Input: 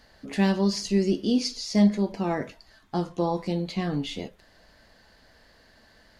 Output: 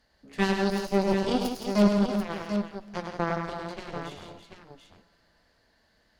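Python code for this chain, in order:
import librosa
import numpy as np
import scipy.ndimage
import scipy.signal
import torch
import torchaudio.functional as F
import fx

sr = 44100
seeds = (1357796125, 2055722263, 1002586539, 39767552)

y = fx.cheby_harmonics(x, sr, harmonics=(3, 4, 7), levels_db=(-16, -19, -19), full_scale_db=-9.5)
y = fx.echo_multitap(y, sr, ms=(103, 168, 333, 739), db=(-5.5, -8.0, -9.5, -8.5))
y = fx.rev_schroeder(y, sr, rt60_s=3.5, comb_ms=30, drr_db=20.0)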